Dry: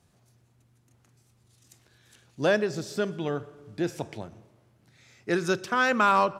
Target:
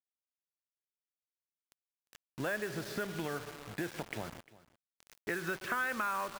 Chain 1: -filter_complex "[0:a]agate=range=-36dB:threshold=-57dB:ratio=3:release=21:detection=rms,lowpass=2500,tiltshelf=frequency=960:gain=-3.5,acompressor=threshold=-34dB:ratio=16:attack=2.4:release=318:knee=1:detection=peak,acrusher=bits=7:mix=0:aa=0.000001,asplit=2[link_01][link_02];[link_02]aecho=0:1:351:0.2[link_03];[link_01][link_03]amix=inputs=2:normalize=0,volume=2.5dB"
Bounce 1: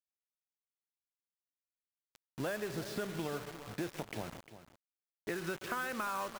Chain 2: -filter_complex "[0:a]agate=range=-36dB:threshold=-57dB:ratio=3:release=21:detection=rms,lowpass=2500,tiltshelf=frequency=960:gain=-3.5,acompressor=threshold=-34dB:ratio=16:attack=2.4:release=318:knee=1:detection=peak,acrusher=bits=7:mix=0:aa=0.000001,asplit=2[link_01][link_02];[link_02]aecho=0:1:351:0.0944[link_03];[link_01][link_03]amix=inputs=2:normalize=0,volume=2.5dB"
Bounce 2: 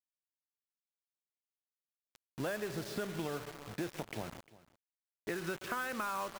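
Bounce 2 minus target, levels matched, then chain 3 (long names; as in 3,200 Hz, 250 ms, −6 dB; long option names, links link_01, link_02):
2,000 Hz band −3.0 dB
-filter_complex "[0:a]agate=range=-36dB:threshold=-57dB:ratio=3:release=21:detection=rms,lowpass=2500,tiltshelf=frequency=960:gain=-3.5,acompressor=threshold=-34dB:ratio=16:attack=2.4:release=318:knee=1:detection=peak,equalizer=frequency=1700:width=1.6:gain=6.5,acrusher=bits=7:mix=0:aa=0.000001,asplit=2[link_01][link_02];[link_02]aecho=0:1:351:0.0944[link_03];[link_01][link_03]amix=inputs=2:normalize=0,volume=2.5dB"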